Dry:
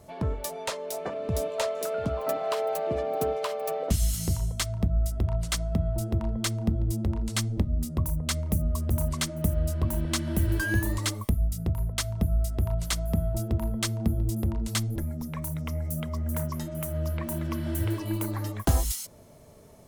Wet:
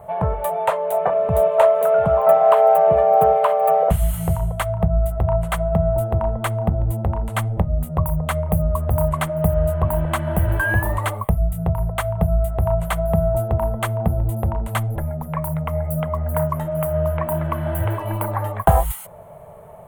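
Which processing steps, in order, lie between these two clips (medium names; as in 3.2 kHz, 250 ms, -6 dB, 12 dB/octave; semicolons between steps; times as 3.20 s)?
FFT filter 100 Hz 0 dB, 170 Hz +4 dB, 270 Hz -14 dB, 470 Hz +4 dB, 750 Hz +13 dB, 3.1 kHz -5 dB, 5.3 kHz -26 dB, 8.7 kHz -7 dB, 16 kHz 0 dB; trim +6 dB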